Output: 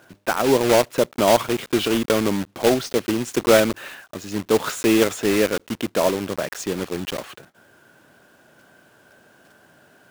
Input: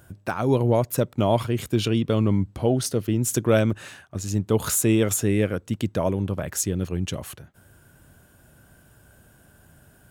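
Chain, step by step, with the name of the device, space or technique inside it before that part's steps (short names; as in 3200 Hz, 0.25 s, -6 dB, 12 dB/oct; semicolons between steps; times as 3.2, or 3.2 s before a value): early digital voice recorder (BPF 300–3500 Hz; block floating point 3-bit); gain +6 dB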